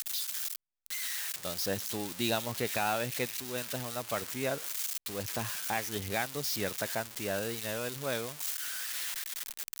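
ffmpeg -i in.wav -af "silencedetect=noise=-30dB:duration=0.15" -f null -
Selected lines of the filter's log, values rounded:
silence_start: 0.56
silence_end: 0.86 | silence_duration: 0.31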